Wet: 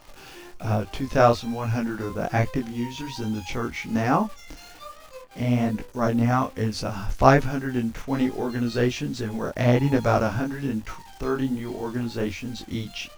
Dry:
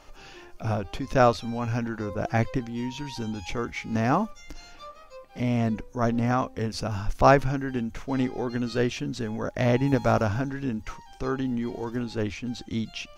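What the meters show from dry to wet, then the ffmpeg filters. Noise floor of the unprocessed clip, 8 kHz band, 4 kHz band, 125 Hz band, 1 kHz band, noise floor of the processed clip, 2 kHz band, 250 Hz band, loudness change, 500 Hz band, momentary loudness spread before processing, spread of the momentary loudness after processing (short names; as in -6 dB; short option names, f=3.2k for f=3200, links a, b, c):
-49 dBFS, +3.0 dB, +2.0 dB, +2.5 dB, +1.5 dB, -46 dBFS, +2.0 dB, +2.5 dB, +2.0 dB, +2.0 dB, 13 LU, 14 LU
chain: -af "acrusher=bits=9:dc=4:mix=0:aa=0.000001,flanger=delay=18.5:depth=7.6:speed=1.2,volume=5dB"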